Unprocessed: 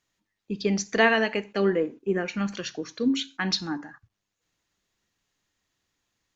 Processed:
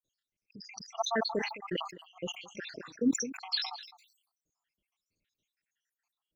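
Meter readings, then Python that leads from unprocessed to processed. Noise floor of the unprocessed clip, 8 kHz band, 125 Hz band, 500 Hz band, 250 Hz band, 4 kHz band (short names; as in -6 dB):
-83 dBFS, n/a, -15.0 dB, -11.5 dB, -8.5 dB, -4.0 dB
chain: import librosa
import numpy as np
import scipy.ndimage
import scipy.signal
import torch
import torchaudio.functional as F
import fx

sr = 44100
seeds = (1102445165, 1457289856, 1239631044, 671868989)

y = fx.spec_dropout(x, sr, seeds[0], share_pct=82)
y = y + 10.0 ** (-20.0 / 20.0) * np.pad(y, (int(212 * sr / 1000.0), 0))[:len(y)]
y = fx.sustainer(y, sr, db_per_s=81.0)
y = y * 10.0 ** (-3.0 / 20.0)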